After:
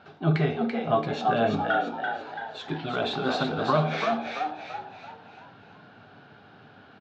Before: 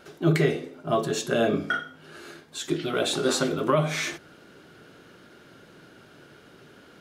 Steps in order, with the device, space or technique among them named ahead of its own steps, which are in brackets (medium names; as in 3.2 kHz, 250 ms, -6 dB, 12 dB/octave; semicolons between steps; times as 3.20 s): frequency-shifting delay pedal into a guitar cabinet (frequency-shifting echo 336 ms, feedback 46%, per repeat +75 Hz, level -5 dB; cabinet simulation 85–3800 Hz, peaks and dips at 100 Hz +8 dB, 350 Hz -10 dB, 520 Hz -7 dB, 780 Hz +8 dB, 2 kHz -6 dB, 3.1 kHz -4 dB)